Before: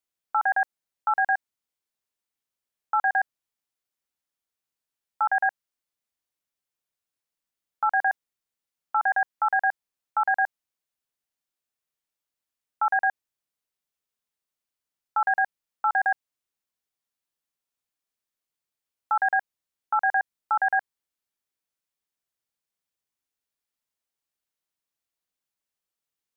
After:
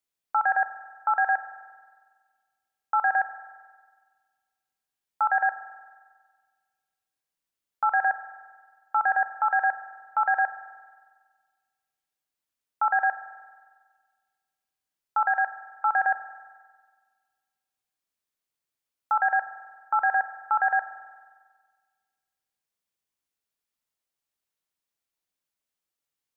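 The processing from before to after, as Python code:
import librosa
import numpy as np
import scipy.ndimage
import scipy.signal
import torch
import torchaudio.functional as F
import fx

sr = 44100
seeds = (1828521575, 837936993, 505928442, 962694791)

y = fx.highpass(x, sr, hz=440.0, slope=6, at=(15.28, 15.85))
y = fx.rev_spring(y, sr, rt60_s=1.6, pass_ms=(45,), chirp_ms=35, drr_db=11.5)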